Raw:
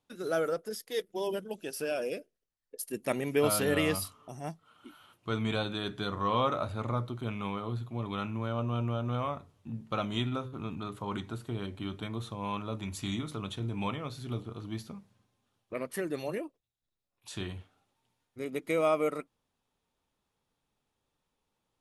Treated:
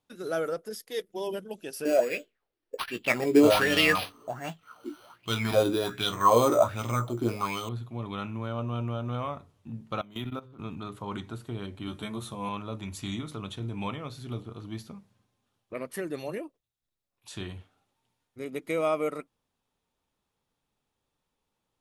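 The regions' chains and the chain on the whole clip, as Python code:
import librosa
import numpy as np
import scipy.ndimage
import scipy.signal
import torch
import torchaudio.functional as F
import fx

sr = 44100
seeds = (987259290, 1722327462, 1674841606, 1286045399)

y = fx.chain(x, sr, fx.doubler(ms=17.0, db=-7),
    fx.resample_bad(factor=6, down='none', up='hold'),
    fx.bell_lfo(hz=1.3, low_hz=320.0, high_hz=3200.0, db=17), at=(1.85, 7.69))
y = fx.chain(y, sr, fx.highpass(hz=110.0, slope=24),
    fx.level_steps(step_db=17),
    fx.resample_linear(factor=3), at=(10.01, 10.59))
y = fx.chain(y, sr, fx.peak_eq(hz=9700.0, db=9.5, octaves=0.91),
    fx.doubler(ms=14.0, db=-4), at=(11.86, 12.49))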